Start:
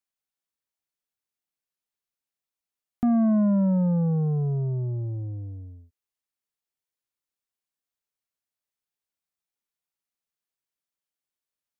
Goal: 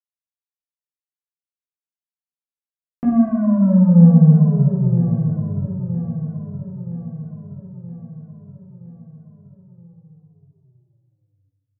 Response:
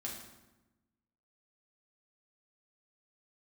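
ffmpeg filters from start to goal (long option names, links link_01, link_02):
-filter_complex "[0:a]agate=range=-22dB:threshold=-40dB:ratio=16:detection=peak,lowshelf=frequency=150:gain=5,aecho=1:1:971|1942|2913|3884|4855|5826:0.299|0.161|0.0871|0.047|0.0254|0.0137[link_01];[1:a]atrim=start_sample=2205,asetrate=32193,aresample=44100[link_02];[link_01][link_02]afir=irnorm=-1:irlink=0,volume=2dB"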